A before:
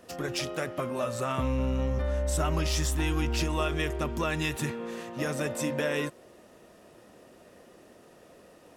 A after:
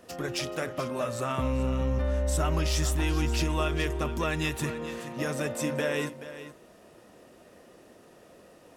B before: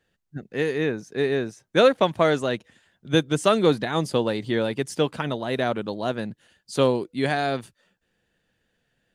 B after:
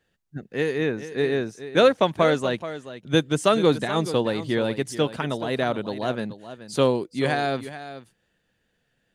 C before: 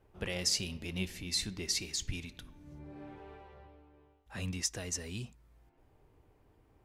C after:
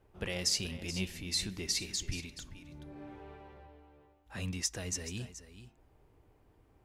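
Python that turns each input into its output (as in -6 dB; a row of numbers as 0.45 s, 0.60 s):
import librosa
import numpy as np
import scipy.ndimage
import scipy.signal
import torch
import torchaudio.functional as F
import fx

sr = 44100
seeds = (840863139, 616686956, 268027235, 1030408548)

y = x + 10.0 ** (-13.0 / 20.0) * np.pad(x, (int(428 * sr / 1000.0), 0))[:len(x)]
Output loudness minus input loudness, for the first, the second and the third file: +0.5 LU, 0.0 LU, 0.0 LU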